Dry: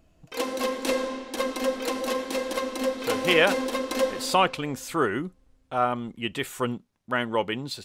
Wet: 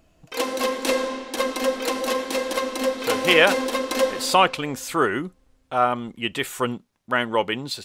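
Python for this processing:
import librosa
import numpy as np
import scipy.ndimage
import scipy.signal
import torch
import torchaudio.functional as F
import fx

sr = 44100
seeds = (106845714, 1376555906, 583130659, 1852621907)

y = fx.low_shelf(x, sr, hz=340.0, db=-5.0)
y = y * 10.0 ** (5.0 / 20.0)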